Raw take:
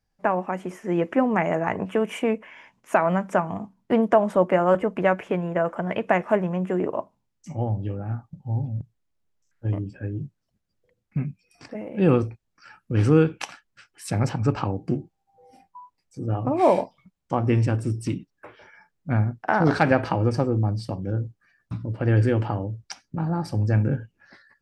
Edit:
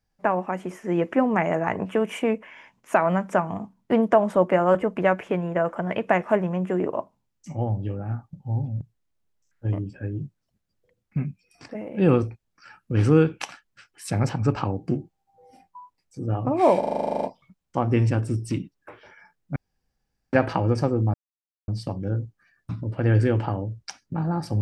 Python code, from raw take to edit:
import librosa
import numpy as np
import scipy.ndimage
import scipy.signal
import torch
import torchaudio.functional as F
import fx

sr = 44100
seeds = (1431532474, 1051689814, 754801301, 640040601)

y = fx.edit(x, sr, fx.stutter(start_s=16.79, slice_s=0.04, count=12),
    fx.room_tone_fill(start_s=19.12, length_s=0.77),
    fx.insert_silence(at_s=20.7, length_s=0.54), tone=tone)